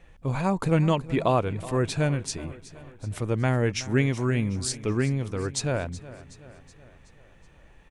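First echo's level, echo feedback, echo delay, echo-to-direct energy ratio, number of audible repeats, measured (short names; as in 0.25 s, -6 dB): -17.0 dB, 54%, 0.373 s, -15.5 dB, 4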